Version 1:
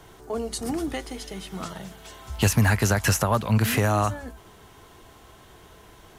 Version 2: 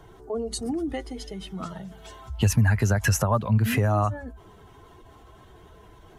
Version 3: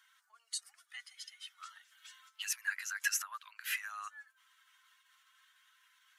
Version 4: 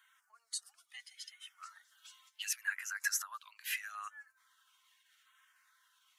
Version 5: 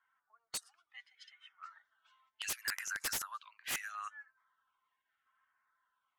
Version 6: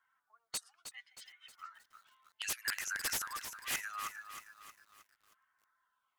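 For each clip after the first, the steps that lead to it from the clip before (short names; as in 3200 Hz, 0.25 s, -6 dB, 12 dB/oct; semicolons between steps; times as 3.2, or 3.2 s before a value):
spectral contrast raised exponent 1.5
steep high-pass 1400 Hz 36 dB/oct; gain -5.5 dB
LFO notch saw down 0.76 Hz 900–5400 Hz
wrapped overs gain 30 dB; low-pass opened by the level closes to 800 Hz, open at -37.5 dBFS; gain +1.5 dB
lo-fi delay 0.314 s, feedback 55%, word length 10-bit, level -9 dB; gain +1 dB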